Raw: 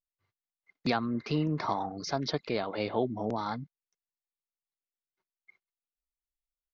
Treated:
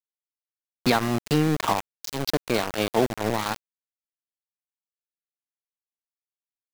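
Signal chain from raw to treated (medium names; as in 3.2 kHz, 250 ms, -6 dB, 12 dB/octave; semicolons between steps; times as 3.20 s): time-frequency box 1.81–2.33 s, 430–2000 Hz -27 dB; small samples zeroed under -30 dBFS; trim +8 dB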